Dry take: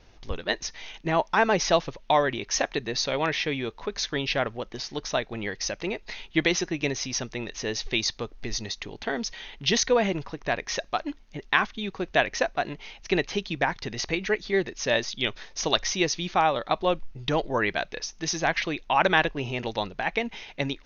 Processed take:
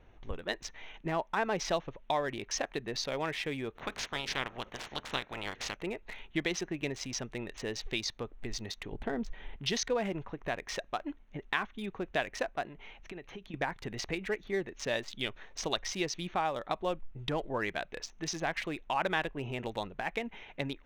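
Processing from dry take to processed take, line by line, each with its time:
3.75–5.75 spectral limiter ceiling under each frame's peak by 24 dB
8.92–9.56 tilt -2.5 dB/oct
12.65–13.54 compressor 10:1, threshold -36 dBFS
whole clip: Wiener smoothing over 9 samples; compressor 1.5:1, threshold -34 dBFS; gain -3.5 dB

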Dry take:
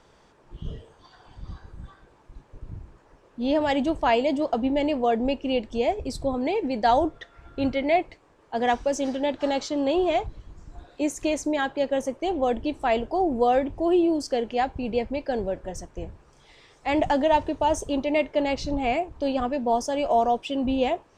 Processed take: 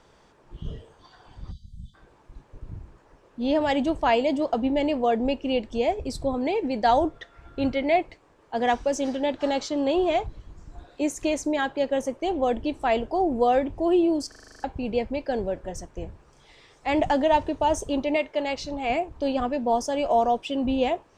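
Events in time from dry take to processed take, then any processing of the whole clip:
1.51–1.95 spectral delete 250–3000 Hz
14.28 stutter in place 0.04 s, 9 plays
18.16–18.9 low shelf 350 Hz -9.5 dB

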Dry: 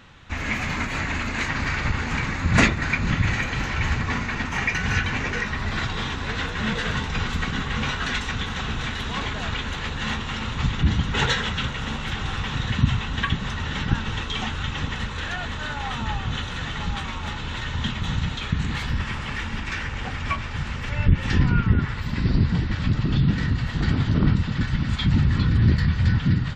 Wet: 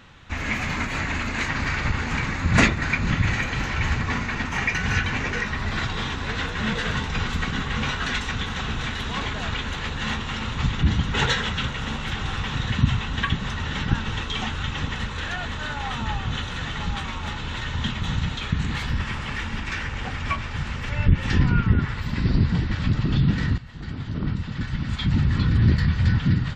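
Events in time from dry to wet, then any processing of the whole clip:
23.58–25.54 fade in linear, from -17 dB

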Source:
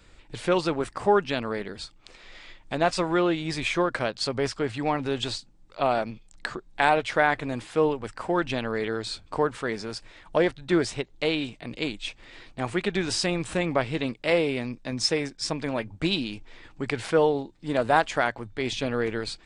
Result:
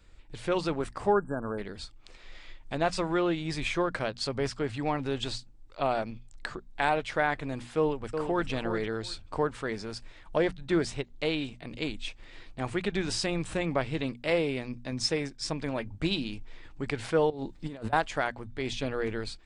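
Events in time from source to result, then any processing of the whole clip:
1.13–1.59 spectral delete 1700–7400 Hz
7.77–8.49 echo throw 0.36 s, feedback 15%, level -7 dB
17.3–17.93 negative-ratio compressor -35 dBFS
whole clip: low shelf 110 Hz +9.5 dB; notches 60/120/180/240 Hz; AGC gain up to 3.5 dB; gain -8 dB

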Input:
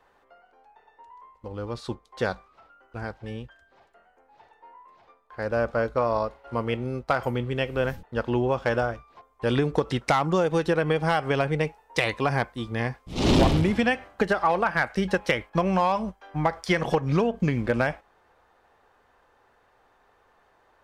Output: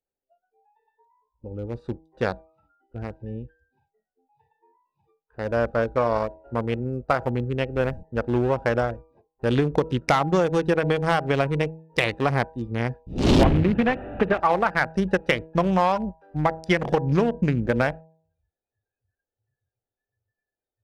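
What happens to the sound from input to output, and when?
6.18–9.51 bell 3300 Hz -5 dB 0.66 oct
13.43–14.4 delta modulation 16 kbps, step -26 dBFS
whole clip: Wiener smoothing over 41 samples; spectral noise reduction 28 dB; de-hum 160.5 Hz, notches 6; gain +3 dB

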